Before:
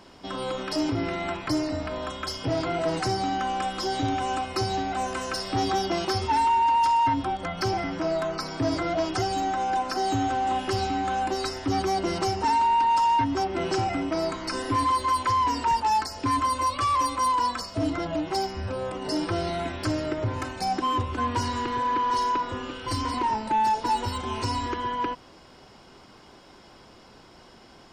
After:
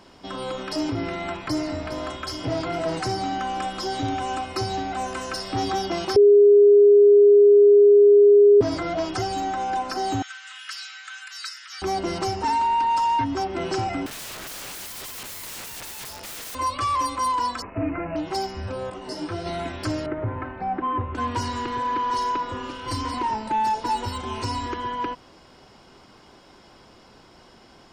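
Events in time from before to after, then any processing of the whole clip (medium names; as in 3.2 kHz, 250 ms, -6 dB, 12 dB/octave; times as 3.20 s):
1.15–1.75 s: echo throw 410 ms, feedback 75%, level -9.5 dB
6.16–8.61 s: bleep 409 Hz -9.5 dBFS
10.22–11.82 s: elliptic high-pass 1.4 kHz, stop band 60 dB
14.06–16.55 s: integer overflow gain 31.5 dB
17.62–18.16 s: careless resampling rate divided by 8×, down none, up filtered
18.90–19.46 s: detune thickener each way 33 cents
20.06–21.15 s: low-pass 2.1 kHz 24 dB/octave
21.72–22.77 s: echo throw 530 ms, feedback 40%, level -15.5 dB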